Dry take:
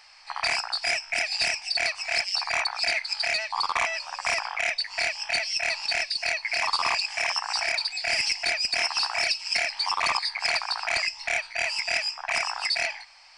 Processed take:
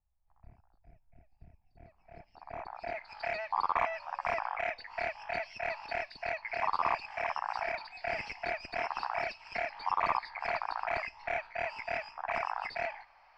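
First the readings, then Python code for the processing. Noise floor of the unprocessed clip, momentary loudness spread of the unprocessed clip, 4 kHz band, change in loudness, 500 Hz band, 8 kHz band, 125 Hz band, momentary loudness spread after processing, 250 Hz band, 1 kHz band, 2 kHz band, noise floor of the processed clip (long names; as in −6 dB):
−47 dBFS, 3 LU, −24.5 dB, −10.0 dB, −1.5 dB, below −30 dB, can't be measured, 7 LU, −1.0 dB, −2.5 dB, −11.5 dB, −69 dBFS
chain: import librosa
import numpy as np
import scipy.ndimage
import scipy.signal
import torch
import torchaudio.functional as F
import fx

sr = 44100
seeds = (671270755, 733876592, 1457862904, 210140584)

y = fx.filter_sweep_lowpass(x, sr, from_hz=100.0, to_hz=1200.0, start_s=1.49, end_s=3.23, q=0.7)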